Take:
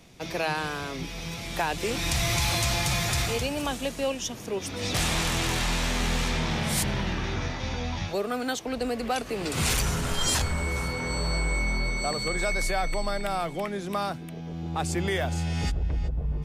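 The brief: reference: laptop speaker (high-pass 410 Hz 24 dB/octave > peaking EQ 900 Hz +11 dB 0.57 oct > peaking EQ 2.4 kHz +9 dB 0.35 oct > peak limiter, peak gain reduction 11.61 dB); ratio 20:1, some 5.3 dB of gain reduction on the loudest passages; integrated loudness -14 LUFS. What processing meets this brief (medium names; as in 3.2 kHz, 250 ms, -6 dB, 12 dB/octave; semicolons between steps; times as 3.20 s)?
compression 20:1, threshold -27 dBFS; high-pass 410 Hz 24 dB/octave; peaking EQ 900 Hz +11 dB 0.57 oct; peaking EQ 2.4 kHz +9 dB 0.35 oct; trim +20.5 dB; peak limiter -6 dBFS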